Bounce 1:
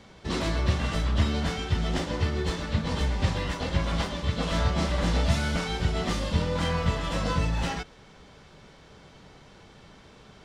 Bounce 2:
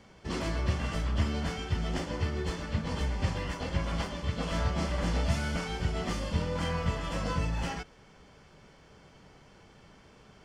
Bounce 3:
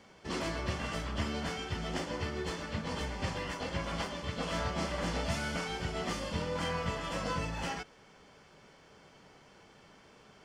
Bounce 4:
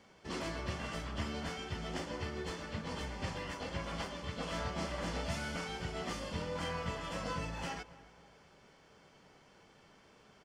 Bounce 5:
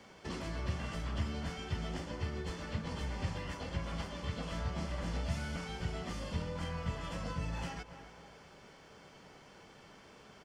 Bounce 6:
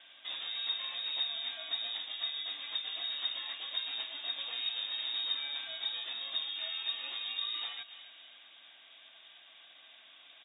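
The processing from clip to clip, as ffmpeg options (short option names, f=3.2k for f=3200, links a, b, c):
-af "bandreject=f=3.8k:w=5.6,volume=-4.5dB"
-af "lowshelf=f=140:g=-11.5"
-filter_complex "[0:a]asplit=2[a][b];[b]adelay=270,lowpass=f=1.9k:p=1,volume=-17.5dB,asplit=2[c][d];[d]adelay=270,lowpass=f=1.9k:p=1,volume=0.49,asplit=2[e][f];[f]adelay=270,lowpass=f=1.9k:p=1,volume=0.49,asplit=2[g][h];[h]adelay=270,lowpass=f=1.9k:p=1,volume=0.49[i];[a][c][e][g][i]amix=inputs=5:normalize=0,volume=-4dB"
-filter_complex "[0:a]acrossover=split=170[a][b];[b]acompressor=threshold=-47dB:ratio=6[c];[a][c]amix=inputs=2:normalize=0,volume=5.5dB"
-af "lowpass=f=3.2k:t=q:w=0.5098,lowpass=f=3.2k:t=q:w=0.6013,lowpass=f=3.2k:t=q:w=0.9,lowpass=f=3.2k:t=q:w=2.563,afreqshift=-3800"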